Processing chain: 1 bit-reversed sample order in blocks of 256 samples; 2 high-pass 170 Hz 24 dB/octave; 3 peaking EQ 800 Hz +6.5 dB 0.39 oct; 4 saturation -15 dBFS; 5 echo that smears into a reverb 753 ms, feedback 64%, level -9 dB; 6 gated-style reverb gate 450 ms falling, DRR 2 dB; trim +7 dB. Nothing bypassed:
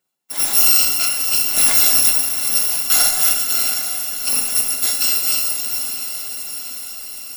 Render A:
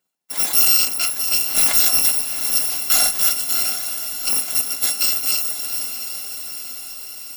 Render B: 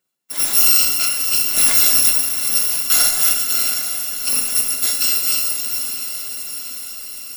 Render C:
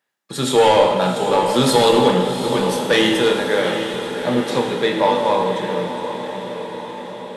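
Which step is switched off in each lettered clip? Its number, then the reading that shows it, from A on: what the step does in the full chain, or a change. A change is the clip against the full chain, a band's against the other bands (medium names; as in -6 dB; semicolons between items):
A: 6, echo-to-direct 0.0 dB to -6.5 dB; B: 3, 1 kHz band -2.0 dB; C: 1, 8 kHz band -30.0 dB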